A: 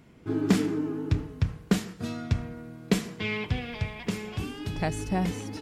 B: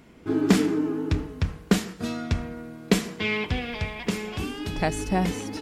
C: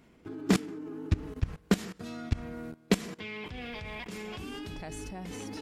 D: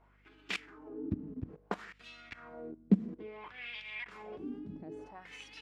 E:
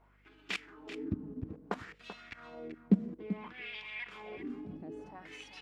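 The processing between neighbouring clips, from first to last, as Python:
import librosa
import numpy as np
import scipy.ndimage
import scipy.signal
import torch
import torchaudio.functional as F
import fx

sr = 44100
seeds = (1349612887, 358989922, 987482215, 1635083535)

y1 = fx.peak_eq(x, sr, hz=120.0, db=-10.0, octaves=0.71)
y1 = y1 * 10.0 ** (5.0 / 20.0)
y2 = fx.level_steps(y1, sr, step_db=20)
y3 = fx.wah_lfo(y2, sr, hz=0.59, low_hz=210.0, high_hz=2900.0, q=2.7)
y3 = fx.add_hum(y3, sr, base_hz=50, snr_db=28)
y3 = y3 * 10.0 ** (3.5 / 20.0)
y4 = y3 + 10.0 ** (-11.5 / 20.0) * np.pad(y3, (int(386 * sr / 1000.0), 0))[:len(y3)]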